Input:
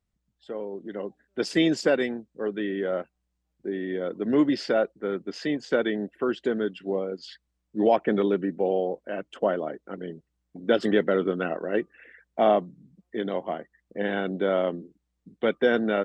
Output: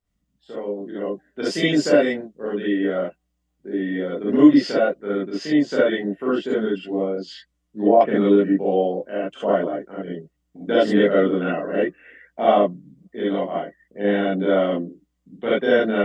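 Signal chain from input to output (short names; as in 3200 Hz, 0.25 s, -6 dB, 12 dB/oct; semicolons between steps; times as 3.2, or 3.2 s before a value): non-linear reverb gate 90 ms rising, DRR -8 dB; 7.01–8.01 treble ducked by the level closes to 890 Hz, closed at -6.5 dBFS; gain -4 dB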